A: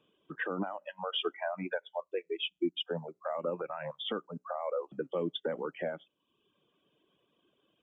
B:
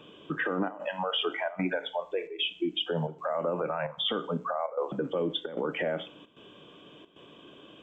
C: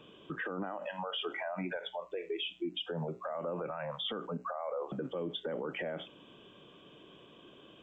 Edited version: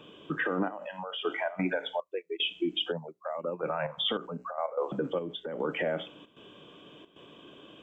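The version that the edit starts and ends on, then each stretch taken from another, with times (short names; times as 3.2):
B
0.72–1.25 from C
2–2.4 from A
2.92–3.63 from A
4.17–4.58 from C
5.19–5.6 from C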